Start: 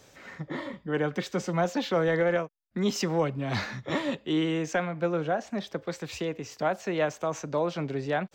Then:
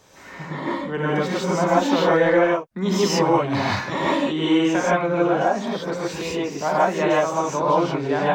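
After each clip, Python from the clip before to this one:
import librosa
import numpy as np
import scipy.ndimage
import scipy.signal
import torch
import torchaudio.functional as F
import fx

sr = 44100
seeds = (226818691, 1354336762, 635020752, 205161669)

y = fx.peak_eq(x, sr, hz=990.0, db=7.5, octaves=0.48)
y = fx.rev_gated(y, sr, seeds[0], gate_ms=190, shape='rising', drr_db=-7.0)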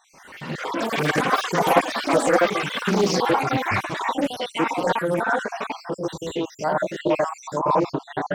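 y = fx.spec_dropout(x, sr, seeds[1], share_pct=62)
y = fx.echo_pitch(y, sr, ms=153, semitones=7, count=3, db_per_echo=-3.0)
y = fx.doppler_dist(y, sr, depth_ms=0.3)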